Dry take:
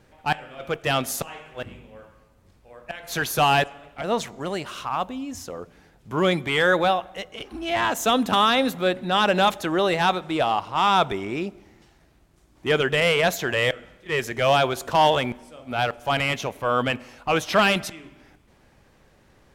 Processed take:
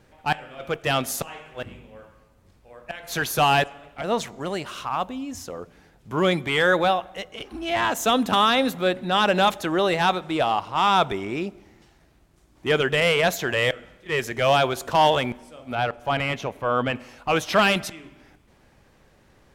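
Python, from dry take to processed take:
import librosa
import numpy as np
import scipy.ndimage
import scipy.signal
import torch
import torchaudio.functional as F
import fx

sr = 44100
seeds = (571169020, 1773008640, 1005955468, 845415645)

y = fx.high_shelf(x, sr, hz=3800.0, db=-10.0, at=(15.75, 16.96))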